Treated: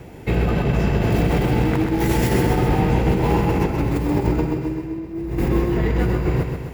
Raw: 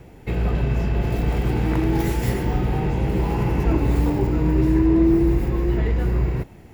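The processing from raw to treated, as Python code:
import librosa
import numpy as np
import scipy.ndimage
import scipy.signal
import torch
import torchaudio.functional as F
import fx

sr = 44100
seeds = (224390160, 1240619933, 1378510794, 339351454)

y = fx.highpass(x, sr, hz=70.0, slope=6)
y = fx.over_compress(y, sr, threshold_db=-23.0, ratio=-0.5)
y = fx.echo_feedback(y, sr, ms=130, feedback_pct=57, wet_db=-6.0)
y = F.gain(torch.from_numpy(y), 4.0).numpy()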